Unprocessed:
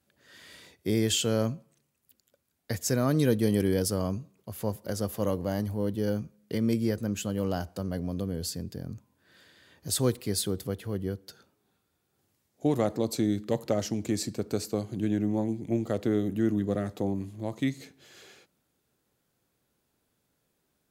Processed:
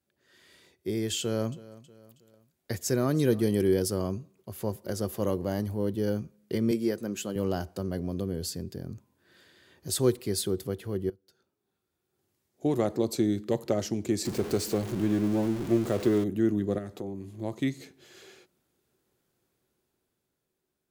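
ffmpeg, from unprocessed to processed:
-filter_complex "[0:a]asettb=1/sr,asplit=3[a][b][c];[a]atrim=end=1.204[d];[b]atrim=start=1.2:end=3.45,asetpts=PTS-STARTPTS,afade=t=in:d=0.004:c=qsin,afade=t=out:st=2.246:d=0.004:c=qsin,aecho=1:1:320|640|960:0.0944|0.0425|0.0191,atrim=end_sample=99225[e];[c]atrim=start=3.446[f];[d][e]acrossfade=d=0.004:c1=hsin:c2=qsin[g];[g][f]acrossfade=d=0.004:c1=qsin:c2=hsin,asettb=1/sr,asplit=3[h][i][j];[h]atrim=end=6.714[k];[i]atrim=start=6.71:end=7.36,asetpts=PTS-STARTPTS,afade=t=in:d=0.004:c=qsin,afade=t=out:st=0.646:d=0.004:c=qsin,highpass=210[l];[j]atrim=start=7.356[m];[k][l]acrossfade=d=0.004:c1=hsin:c2=qsin[n];[n][m]acrossfade=d=0.004:c1=qsin:c2=hsin,asettb=1/sr,asplit=3[o][p][q];[o]atrim=end=14.254[r];[p]atrim=start=14.25:end=16.24,asetpts=PTS-STARTPTS,afade=t=in:d=0.004:c=qsin,afade=t=out:st=1.986:d=0.004:c=qsin,aeval=exprs='val(0)+0.5*0.0224*sgn(val(0))':c=same[s];[q]atrim=start=16.236[t];[r][s]acrossfade=d=0.004:c1=hsin:c2=qsin[u];[u][t]acrossfade=d=0.004:c1=qsin:c2=hsin,asettb=1/sr,asplit=3[v][w][x];[v]atrim=end=16.784[y];[w]atrim=start=16.78:end=17.32,asetpts=PTS-STARTPTS,afade=t=in:d=0.004:c=qsin,afade=t=out:st=0.536:d=0.004:c=qsin,acompressor=threshold=-38dB:ratio=2:attack=3.2:release=140:knee=1:detection=peak[z];[x]atrim=start=17.316[aa];[y][z]acrossfade=d=0.004:c1=hsin:c2=qsin[ab];[ab][aa]acrossfade=d=0.004:c1=qsin:c2=hsin,asplit=2[ac][ad];[ac]atrim=end=11.1,asetpts=PTS-STARTPTS,afade=t=out:st=11.096:d=0.004:c=hsin:silence=0.0707946[ae];[ad]atrim=start=11.1,asetpts=PTS-STARTPTS,afade=t=in:d=1.85:silence=0.0707946[af];[ae][af]concat=n=2:v=0:a=1,equalizer=f=370:w=7.8:g=10,dynaudnorm=f=200:g=13:m=8dB,volume=-8.5dB"

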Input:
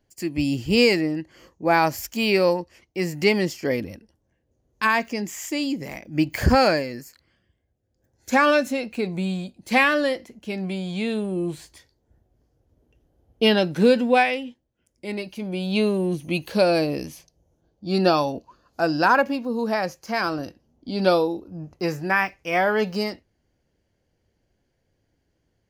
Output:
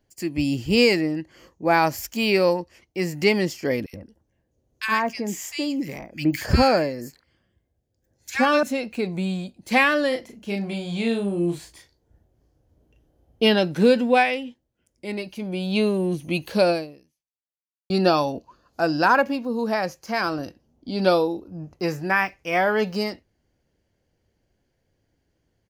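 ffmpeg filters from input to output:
-filter_complex "[0:a]asettb=1/sr,asplit=3[a][b][c];[a]atrim=end=3.864[d];[b]atrim=start=3.86:end=8.63,asetpts=PTS-STARTPTS,afade=t=in:d=0.004:c=qsin,afade=t=out:st=4.766:d=0.004:c=qsin,acrossover=split=1600[e][f];[e]adelay=70[g];[g][f]amix=inputs=2:normalize=0,atrim=end_sample=210357[h];[c]atrim=start=8.626[i];[d][h]acrossfade=d=0.004:c1=hsin:c2=qsin[j];[j][i]acrossfade=d=0.004:c1=qsin:c2=hsin,asplit=3[k][l][m];[k]afade=t=out:st=10.11:d=0.02[n];[l]asplit=2[o][p];[p]adelay=35,volume=-4dB[q];[o][q]amix=inputs=2:normalize=0,afade=t=in:st=10.11:d=0.02,afade=t=out:st=13.44:d=0.02[r];[m]afade=t=in:st=13.44:d=0.02[s];[n][r][s]amix=inputs=3:normalize=0,asplit=2[t][u];[t]atrim=end=17.9,asetpts=PTS-STARTPTS,afade=t=out:st=16.7:d=1.2:c=exp[v];[u]atrim=start=17.9,asetpts=PTS-STARTPTS,afade=t=in:d=0.004:c=hsin[w];[v][w]concat=n=2:v=0:a=1"

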